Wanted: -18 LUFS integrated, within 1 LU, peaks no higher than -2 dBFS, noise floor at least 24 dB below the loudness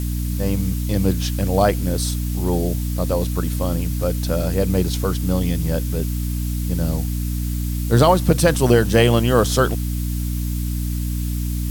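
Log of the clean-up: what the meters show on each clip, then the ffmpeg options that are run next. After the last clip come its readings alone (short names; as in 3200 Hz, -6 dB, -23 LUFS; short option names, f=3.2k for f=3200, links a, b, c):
hum 60 Hz; harmonics up to 300 Hz; hum level -20 dBFS; noise floor -23 dBFS; noise floor target -45 dBFS; loudness -20.5 LUFS; peak -2.0 dBFS; loudness target -18.0 LUFS
-> -af "bandreject=f=60:t=h:w=6,bandreject=f=120:t=h:w=6,bandreject=f=180:t=h:w=6,bandreject=f=240:t=h:w=6,bandreject=f=300:t=h:w=6"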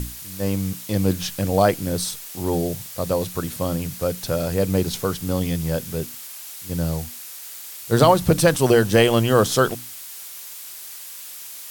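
hum none; noise floor -37 dBFS; noise floor target -46 dBFS
-> -af "afftdn=nr=9:nf=-37"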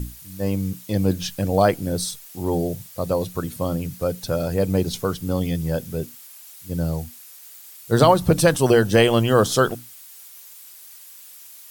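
noise floor -44 dBFS; noise floor target -46 dBFS
-> -af "afftdn=nr=6:nf=-44"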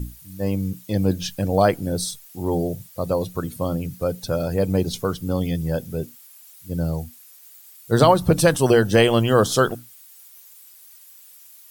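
noise floor -48 dBFS; loudness -21.5 LUFS; peak -2.0 dBFS; loudness target -18.0 LUFS
-> -af "volume=3.5dB,alimiter=limit=-2dB:level=0:latency=1"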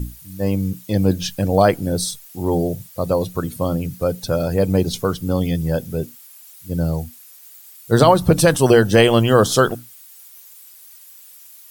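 loudness -18.5 LUFS; peak -2.0 dBFS; noise floor -44 dBFS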